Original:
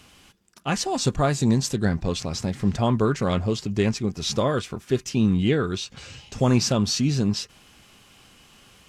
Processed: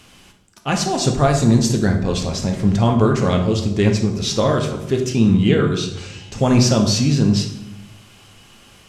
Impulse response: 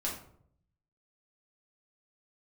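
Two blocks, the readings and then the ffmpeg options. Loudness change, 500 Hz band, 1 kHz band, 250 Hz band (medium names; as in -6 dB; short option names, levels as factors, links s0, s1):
+6.0 dB, +6.0 dB, +5.5 dB, +6.5 dB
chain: -filter_complex "[0:a]asplit=2[s0][s1];[1:a]atrim=start_sample=2205,asetrate=25137,aresample=44100[s2];[s1][s2]afir=irnorm=-1:irlink=0,volume=0.501[s3];[s0][s3]amix=inputs=2:normalize=0"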